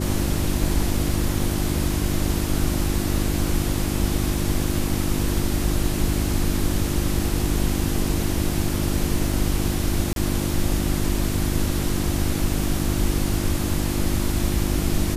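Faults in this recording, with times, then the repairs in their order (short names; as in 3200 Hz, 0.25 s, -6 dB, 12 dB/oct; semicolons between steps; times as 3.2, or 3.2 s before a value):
hum 50 Hz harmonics 7 -26 dBFS
10.13–10.16 gap 32 ms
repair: de-hum 50 Hz, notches 7; interpolate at 10.13, 32 ms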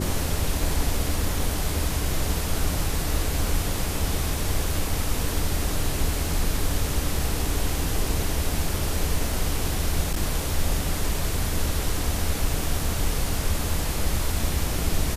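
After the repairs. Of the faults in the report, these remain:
none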